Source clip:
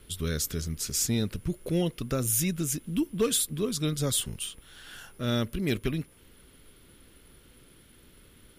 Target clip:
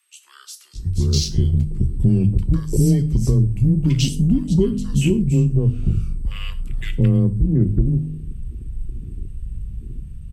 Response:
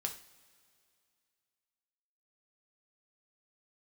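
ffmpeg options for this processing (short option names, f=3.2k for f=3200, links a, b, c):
-filter_complex "[0:a]aemphasis=mode=reproduction:type=riaa,bandreject=f=55.64:t=h:w=4,bandreject=f=111.28:t=h:w=4,bandreject=f=166.92:t=h:w=4,bandreject=f=222.56:t=h:w=4,bandreject=f=278.2:t=h:w=4,bandreject=f=333.84:t=h:w=4,bandreject=f=389.48:t=h:w=4,asetrate=36647,aresample=44100,afwtdn=0.01,acrossover=split=440|2300[a][b][c];[a]acompressor=threshold=-28dB:ratio=4[d];[b]acompressor=threshold=-49dB:ratio=4[e];[c]acompressor=threshold=-40dB:ratio=4[f];[d][e][f]amix=inputs=3:normalize=0,acrossover=split=1000[g][h];[g]adelay=730[i];[i][h]amix=inputs=2:normalize=0,acrossover=split=880[j][k];[j]dynaudnorm=f=170:g=11:m=8.5dB[l];[k]crystalizer=i=6:c=0[m];[l][m]amix=inputs=2:normalize=0,afreqshift=16,asplit=2[n][o];[1:a]atrim=start_sample=2205,atrim=end_sample=6174,highshelf=f=4.7k:g=8.5[p];[o][p]afir=irnorm=-1:irlink=0,volume=-2dB[q];[n][q]amix=inputs=2:normalize=0"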